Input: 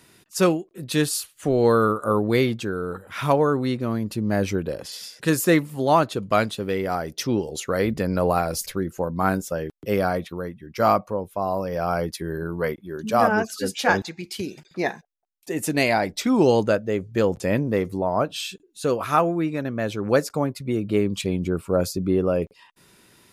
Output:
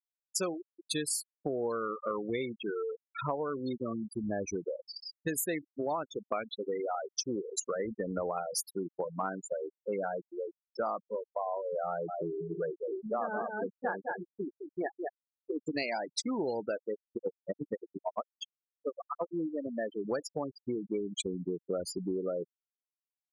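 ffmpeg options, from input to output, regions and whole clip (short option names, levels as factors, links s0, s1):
-filter_complex "[0:a]asettb=1/sr,asplit=3[s0][s1][s2];[s0]atrim=end=11.874[s3];[s1]atrim=start=11.87:end=15.67,asetpts=PTS-STARTPTS,afade=t=in:d=0.004:c=qsin,afade=t=out:st=3.796:d=0.004:c=qsin,lowpass=1700,aecho=1:1:208:0.473,atrim=end_sample=167580[s4];[s2]atrim=start=15.666[s5];[s3][s4]acrossfade=d=0.004:c1=hsin:c2=qsin[s6];[s6][s5]acrossfade=d=0.004:c1=qsin:c2=hsin,asettb=1/sr,asplit=3[s7][s8][s9];[s7]atrim=end=16.934[s10];[s8]atrim=start=16.93:end=19.35,asetpts=PTS-STARTPTS,afade=t=in:d=0.004:c=qsin,afade=t=out:st=2.416:d=0.004:c=qsin,bandreject=f=138.6:t=h:w=4,bandreject=f=277.2:t=h:w=4,bandreject=f=415.8:t=h:w=4,bandreject=f=554.4:t=h:w=4,bandreject=f=693:t=h:w=4,bandreject=f=831.6:t=h:w=4,bandreject=f=970.2:t=h:w=4,bandreject=f=1108.8:t=h:w=4,bandreject=f=1247.4:t=h:w=4,bandreject=f=1386:t=h:w=4,bandreject=f=1524.6:t=h:w=4,bandreject=f=1663.2:t=h:w=4,bandreject=f=1801.8:t=h:w=4,bandreject=f=1940.4:t=h:w=4,bandreject=f=2079:t=h:w=4,bandreject=f=2217.6:t=h:w=4,bandreject=f=2356.2:t=h:w=4,bandreject=f=2494.8:t=h:w=4,bandreject=f=2633.4:t=h:w=4,bandreject=f=2772:t=h:w=4,bandreject=f=2910.6:t=h:w=4,bandreject=f=3049.2:t=h:w=4,bandreject=f=3187.8:t=h:w=4,bandreject=f=3326.4:t=h:w=4,bandreject=f=3465:t=h:w=4,bandreject=f=3603.6:t=h:w=4,bandreject=f=3742.2:t=h:w=4,bandreject=f=3880.8:t=h:w=4,bandreject=f=4019.4:t=h:w=4,bandreject=f=4158:t=h:w=4,bandreject=f=4296.6:t=h:w=4,bandreject=f=4435.2:t=h:w=4,bandreject=f=4573.8:t=h:w=4,aeval=exprs='val(0)*pow(10,-33*(0.5-0.5*cos(2*PI*8.7*n/s))/20)':c=same[s11];[s9]atrim=start=19.346[s12];[s10][s11]acrossfade=d=0.004:c1=hsin:c2=qsin[s13];[s13][s12]acrossfade=d=0.004:c1=qsin:c2=hsin,bass=f=250:g=-9,treble=f=4000:g=9,afftfilt=real='re*gte(hypot(re,im),0.126)':imag='im*gte(hypot(re,im),0.126)':win_size=1024:overlap=0.75,acompressor=threshold=0.0355:ratio=6,volume=0.794"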